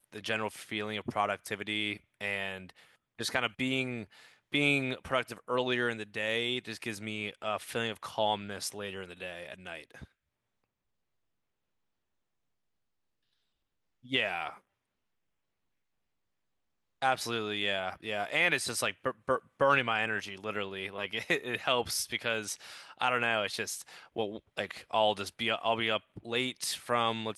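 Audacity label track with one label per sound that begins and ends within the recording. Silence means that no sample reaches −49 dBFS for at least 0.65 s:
14.050000	14.580000	sound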